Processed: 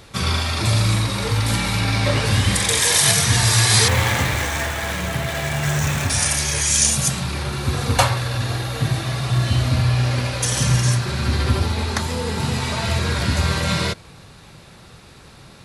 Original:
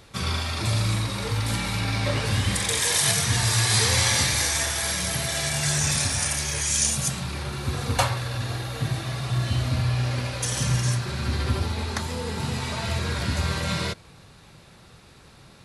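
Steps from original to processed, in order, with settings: 3.88–6.10 s: median filter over 9 samples; trim +6 dB

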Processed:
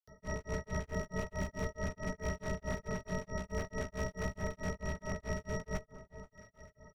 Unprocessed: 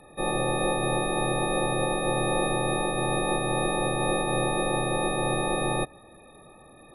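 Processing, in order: resampled via 22.05 kHz; in parallel at -1.5 dB: compression 4:1, threshold -43 dBFS, peak gain reduction 17 dB; on the sum: pitch shift -11.5 st; static phaser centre 1.6 kHz, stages 8; one-sided clip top -26.5 dBFS, bottom -18.5 dBFS; pre-emphasis filter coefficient 0.8; doubling 16 ms -10 dB; on a send: echo whose repeats swap between lows and highs 419 ms, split 1.3 kHz, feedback 51%, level -13 dB; on the sum: granulator 218 ms, grains 4.6 per s, pitch spread up and down by 0 st; trim +9 dB

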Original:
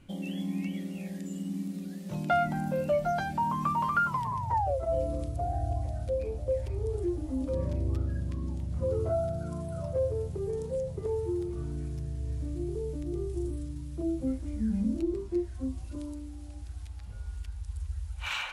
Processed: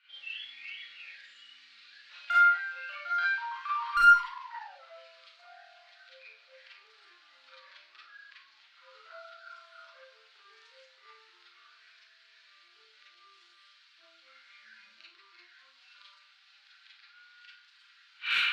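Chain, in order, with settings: Chebyshev band-pass 1.4–4.4 kHz, order 3; one-sided clip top -26.5 dBFS; Schroeder reverb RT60 0.38 s, combs from 32 ms, DRR -7 dB

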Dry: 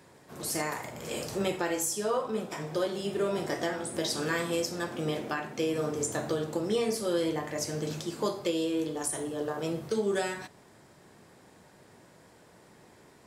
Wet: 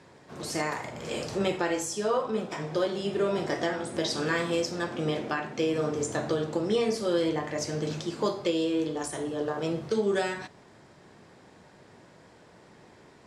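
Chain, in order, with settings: low-pass 6.1 kHz 12 dB/octave; trim +2.5 dB

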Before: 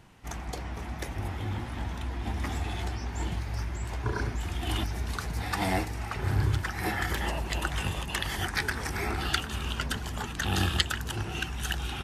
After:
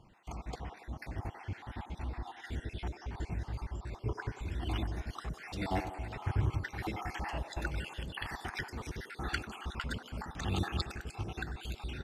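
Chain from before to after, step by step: random holes in the spectrogram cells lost 51%; low-pass 3.3 kHz 6 dB/octave; feedback echo behind a band-pass 94 ms, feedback 64%, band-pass 660 Hz, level -8.5 dB; trim -4 dB

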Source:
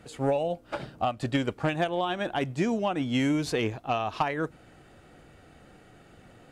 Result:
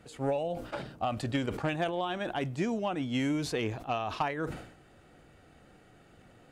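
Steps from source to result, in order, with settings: decay stretcher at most 83 dB/s; trim -4.5 dB

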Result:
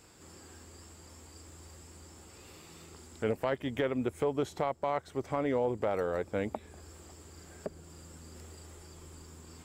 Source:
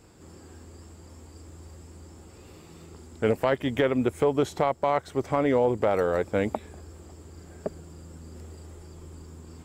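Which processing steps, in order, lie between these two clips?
tape noise reduction on one side only encoder only; trim -7.5 dB

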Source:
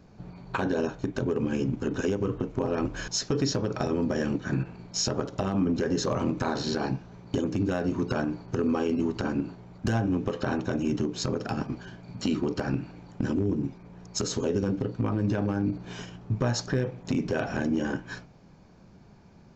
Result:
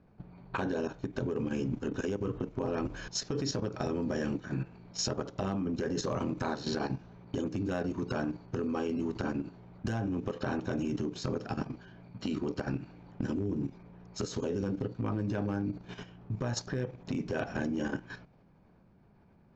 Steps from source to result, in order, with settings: level-controlled noise filter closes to 2.4 kHz, open at -22.5 dBFS; level held to a coarse grid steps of 10 dB; trim -2 dB

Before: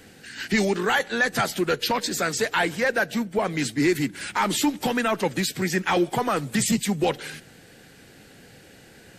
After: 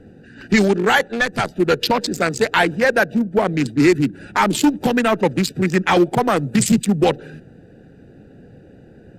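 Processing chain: local Wiener filter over 41 samples; 1.07–1.60 s: valve stage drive 17 dB, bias 0.7; trim +8.5 dB

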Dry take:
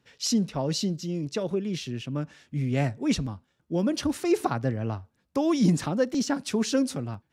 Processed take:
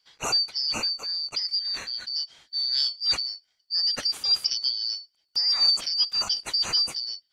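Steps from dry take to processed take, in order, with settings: four frequency bands reordered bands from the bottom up 4321

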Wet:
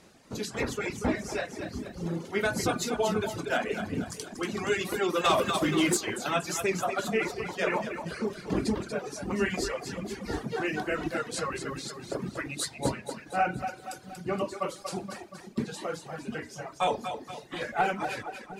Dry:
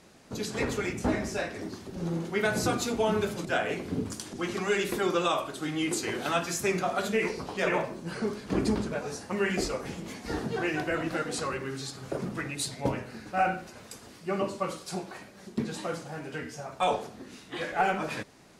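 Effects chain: two-band feedback delay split 310 Hz, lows 703 ms, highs 236 ms, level -6 dB; reverb removal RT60 1.3 s; 5.24–5.97 s: waveshaping leveller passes 2

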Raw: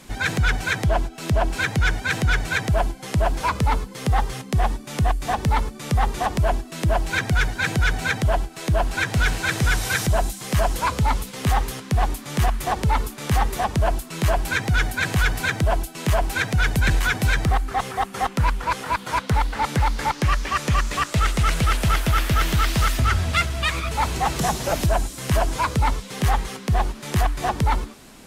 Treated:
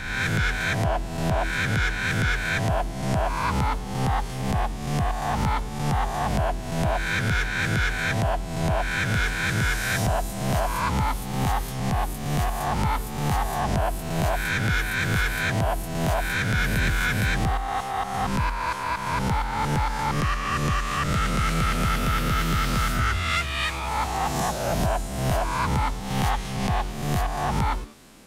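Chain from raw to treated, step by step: reverse spectral sustain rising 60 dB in 1.08 s; 25.98–26.96 s: dynamic bell 3.1 kHz, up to +4 dB, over -35 dBFS, Q 0.77; trim -7 dB

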